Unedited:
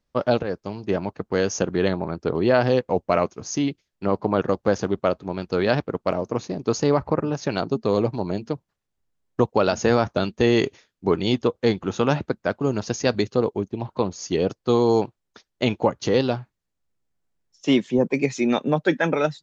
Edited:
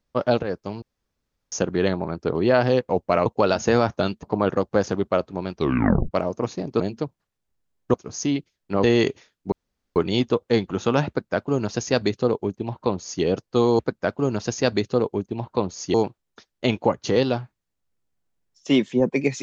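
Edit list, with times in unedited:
0.82–1.52 s: room tone
3.26–4.15 s: swap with 9.43–10.40 s
5.47 s: tape stop 0.56 s
6.72–8.29 s: delete
11.09 s: insert room tone 0.44 s
12.21–14.36 s: copy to 14.92 s

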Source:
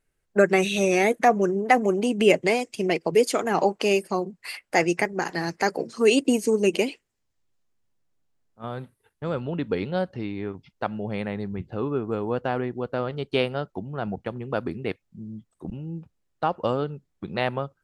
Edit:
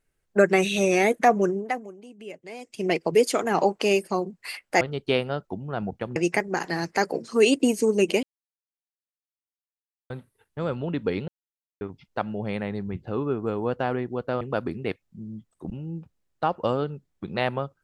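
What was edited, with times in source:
1.48–2.90 s: dip -22 dB, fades 0.50 s quadratic
6.88–8.75 s: mute
9.93–10.46 s: mute
13.06–14.41 s: move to 4.81 s

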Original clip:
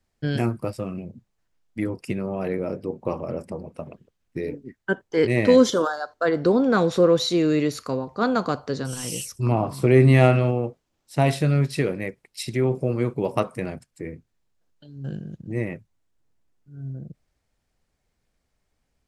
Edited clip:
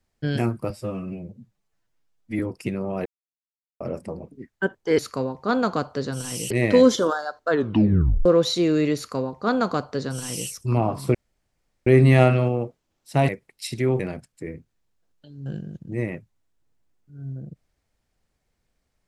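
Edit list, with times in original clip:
0.70–1.83 s: stretch 1.5×
2.49–3.24 s: mute
3.75–4.58 s: delete
6.24 s: tape stop 0.76 s
7.71–9.23 s: copy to 5.25 s
9.89 s: insert room tone 0.72 s
11.31–12.04 s: delete
12.75–13.58 s: delete

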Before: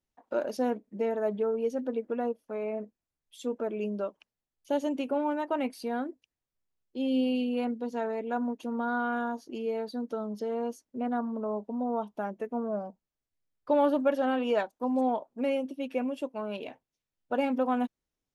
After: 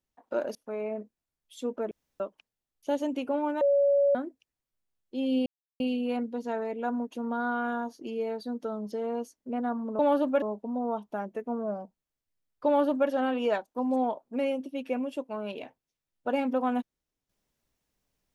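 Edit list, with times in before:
0.55–2.37 s: delete
3.73–4.02 s: room tone
5.43–5.97 s: bleep 564 Hz -19.5 dBFS
7.28 s: insert silence 0.34 s
13.71–14.14 s: copy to 11.47 s

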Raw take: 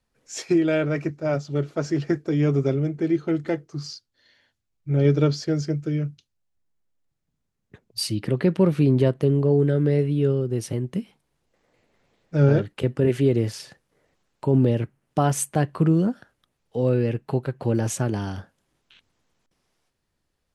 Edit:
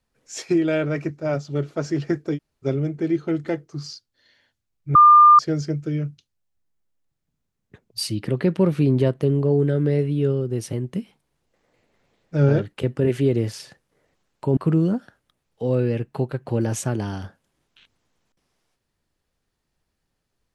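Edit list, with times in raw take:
2.36–2.65 s: room tone, crossfade 0.06 s
4.95–5.39 s: bleep 1.2 kHz -7 dBFS
14.57–15.71 s: delete

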